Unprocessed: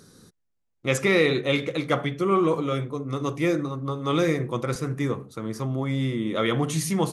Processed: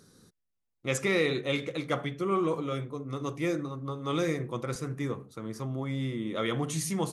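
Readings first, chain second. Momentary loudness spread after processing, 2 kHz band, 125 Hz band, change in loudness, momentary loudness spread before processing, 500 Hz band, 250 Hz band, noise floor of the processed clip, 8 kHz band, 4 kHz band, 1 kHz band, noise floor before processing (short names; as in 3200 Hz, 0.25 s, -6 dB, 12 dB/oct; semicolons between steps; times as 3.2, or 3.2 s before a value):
8 LU, -6.5 dB, -6.5 dB, -6.5 dB, 8 LU, -6.5 dB, -6.5 dB, -81 dBFS, -3.5 dB, -6.0 dB, -6.5 dB, -74 dBFS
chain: dynamic EQ 7600 Hz, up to +4 dB, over -44 dBFS, Q 1.1; gain -6.5 dB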